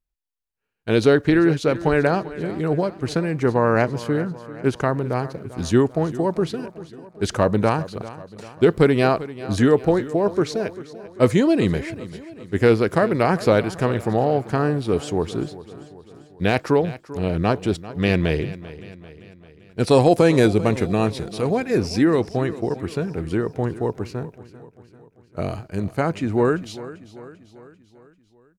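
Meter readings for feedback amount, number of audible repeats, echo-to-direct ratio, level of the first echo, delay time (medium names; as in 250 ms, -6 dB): 54%, 4, -15.0 dB, -16.5 dB, 393 ms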